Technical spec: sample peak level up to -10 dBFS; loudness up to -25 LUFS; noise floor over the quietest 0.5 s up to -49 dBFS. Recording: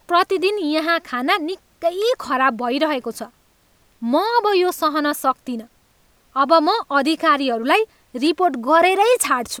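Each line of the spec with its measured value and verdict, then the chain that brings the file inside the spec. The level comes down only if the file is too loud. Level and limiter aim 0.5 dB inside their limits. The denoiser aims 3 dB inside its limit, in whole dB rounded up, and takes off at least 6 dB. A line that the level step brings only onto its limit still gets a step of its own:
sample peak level -3.0 dBFS: fail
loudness -18.5 LUFS: fail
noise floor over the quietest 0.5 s -58 dBFS: pass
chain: trim -7 dB; peak limiter -10.5 dBFS

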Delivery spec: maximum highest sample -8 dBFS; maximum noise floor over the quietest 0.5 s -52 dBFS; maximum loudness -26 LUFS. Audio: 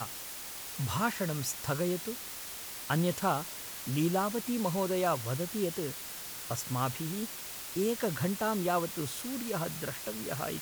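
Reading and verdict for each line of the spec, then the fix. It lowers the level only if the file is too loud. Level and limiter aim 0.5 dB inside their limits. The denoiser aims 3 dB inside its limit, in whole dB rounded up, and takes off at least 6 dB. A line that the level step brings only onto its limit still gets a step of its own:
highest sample -16.5 dBFS: pass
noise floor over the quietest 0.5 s -42 dBFS: fail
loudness -33.5 LUFS: pass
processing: noise reduction 13 dB, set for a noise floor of -42 dBFS

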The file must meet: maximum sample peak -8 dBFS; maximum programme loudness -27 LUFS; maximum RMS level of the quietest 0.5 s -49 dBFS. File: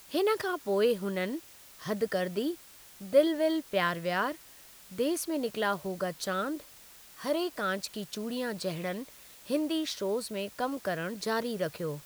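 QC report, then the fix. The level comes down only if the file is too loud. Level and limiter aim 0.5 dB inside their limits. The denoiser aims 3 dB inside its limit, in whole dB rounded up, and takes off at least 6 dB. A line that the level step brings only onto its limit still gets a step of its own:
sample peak -11.5 dBFS: pass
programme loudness -31.5 LUFS: pass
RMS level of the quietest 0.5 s -53 dBFS: pass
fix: none needed

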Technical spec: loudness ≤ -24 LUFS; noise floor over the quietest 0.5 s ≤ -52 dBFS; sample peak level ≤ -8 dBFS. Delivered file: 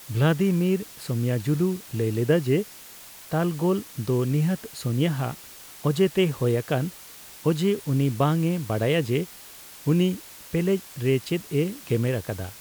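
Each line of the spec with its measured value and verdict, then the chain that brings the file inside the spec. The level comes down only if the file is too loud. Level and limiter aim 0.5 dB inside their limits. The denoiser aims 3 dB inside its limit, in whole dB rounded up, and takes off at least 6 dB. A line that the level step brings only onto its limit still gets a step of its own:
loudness -25.0 LUFS: pass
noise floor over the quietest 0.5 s -45 dBFS: fail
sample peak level -10.0 dBFS: pass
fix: noise reduction 10 dB, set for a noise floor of -45 dBFS

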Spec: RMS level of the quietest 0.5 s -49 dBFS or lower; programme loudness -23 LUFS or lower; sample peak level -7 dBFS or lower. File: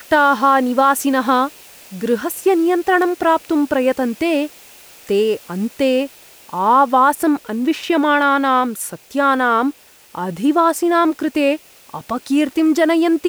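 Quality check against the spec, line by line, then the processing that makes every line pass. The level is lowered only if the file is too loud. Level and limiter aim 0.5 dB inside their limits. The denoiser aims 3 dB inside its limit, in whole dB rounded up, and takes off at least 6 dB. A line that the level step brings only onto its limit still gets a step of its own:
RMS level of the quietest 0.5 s -43 dBFS: fail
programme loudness -16.5 LUFS: fail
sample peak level -3.0 dBFS: fail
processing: trim -7 dB

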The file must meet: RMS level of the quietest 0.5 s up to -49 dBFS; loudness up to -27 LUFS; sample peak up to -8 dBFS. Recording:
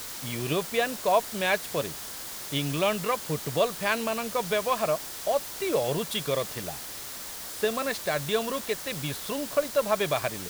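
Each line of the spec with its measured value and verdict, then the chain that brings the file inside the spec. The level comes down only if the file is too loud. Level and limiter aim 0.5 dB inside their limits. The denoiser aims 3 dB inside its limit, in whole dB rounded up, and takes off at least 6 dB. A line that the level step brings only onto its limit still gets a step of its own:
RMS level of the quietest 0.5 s -39 dBFS: fail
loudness -28.5 LUFS: pass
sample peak -10.0 dBFS: pass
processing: noise reduction 13 dB, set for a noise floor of -39 dBFS

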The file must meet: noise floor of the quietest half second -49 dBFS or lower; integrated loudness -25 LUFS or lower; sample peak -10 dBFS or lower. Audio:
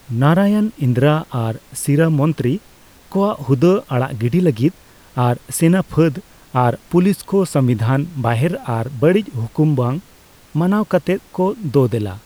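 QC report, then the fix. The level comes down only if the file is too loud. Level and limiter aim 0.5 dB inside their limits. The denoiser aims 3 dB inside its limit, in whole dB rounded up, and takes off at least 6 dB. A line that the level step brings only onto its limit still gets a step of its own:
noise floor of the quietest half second -47 dBFS: fail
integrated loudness -17.5 LUFS: fail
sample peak -2.5 dBFS: fail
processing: trim -8 dB

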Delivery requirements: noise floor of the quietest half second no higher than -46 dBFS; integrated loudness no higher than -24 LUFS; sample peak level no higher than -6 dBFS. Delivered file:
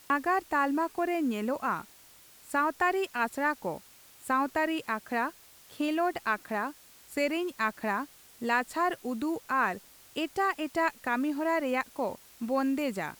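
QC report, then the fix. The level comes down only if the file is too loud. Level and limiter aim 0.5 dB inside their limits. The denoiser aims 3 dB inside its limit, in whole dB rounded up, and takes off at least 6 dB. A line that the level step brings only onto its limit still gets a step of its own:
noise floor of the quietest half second -56 dBFS: pass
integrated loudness -30.5 LUFS: pass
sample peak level -14.0 dBFS: pass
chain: none needed

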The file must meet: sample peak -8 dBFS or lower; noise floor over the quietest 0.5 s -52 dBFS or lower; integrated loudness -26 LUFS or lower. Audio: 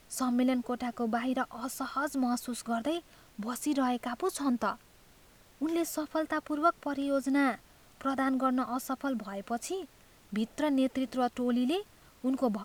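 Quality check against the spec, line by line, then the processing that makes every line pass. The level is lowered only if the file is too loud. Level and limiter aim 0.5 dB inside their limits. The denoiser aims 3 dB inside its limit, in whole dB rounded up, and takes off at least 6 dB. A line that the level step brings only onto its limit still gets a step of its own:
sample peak -13.5 dBFS: pass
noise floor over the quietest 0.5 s -59 dBFS: pass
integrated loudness -32.0 LUFS: pass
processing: none needed

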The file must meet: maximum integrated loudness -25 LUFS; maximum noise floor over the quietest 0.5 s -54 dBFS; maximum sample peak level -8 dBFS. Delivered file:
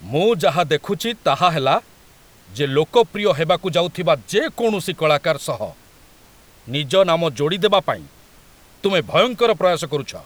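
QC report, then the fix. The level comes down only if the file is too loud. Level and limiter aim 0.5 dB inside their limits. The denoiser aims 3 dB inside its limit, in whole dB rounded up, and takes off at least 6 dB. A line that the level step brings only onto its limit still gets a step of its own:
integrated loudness -19.0 LUFS: fail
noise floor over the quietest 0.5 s -49 dBFS: fail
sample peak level -2.5 dBFS: fail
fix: trim -6.5 dB

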